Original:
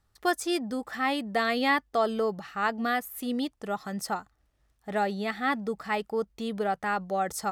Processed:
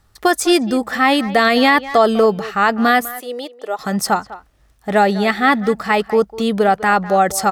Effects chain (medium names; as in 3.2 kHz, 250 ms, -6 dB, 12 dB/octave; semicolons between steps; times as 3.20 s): 3.11–3.79 s: ladder high-pass 400 Hz, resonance 45%; speakerphone echo 200 ms, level -16 dB; loudness maximiser +17 dB; trim -2.5 dB